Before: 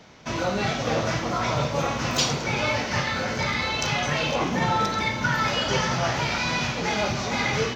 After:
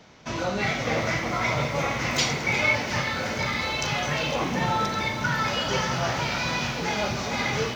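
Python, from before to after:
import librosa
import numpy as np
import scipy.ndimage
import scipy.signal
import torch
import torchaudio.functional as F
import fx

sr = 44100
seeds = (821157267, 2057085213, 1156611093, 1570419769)

y = fx.peak_eq(x, sr, hz=2100.0, db=12.0, octaves=0.26, at=(0.59, 2.75))
y = fx.echo_crushed(y, sr, ms=357, feedback_pct=80, bits=7, wet_db=-14.0)
y = F.gain(torch.from_numpy(y), -2.0).numpy()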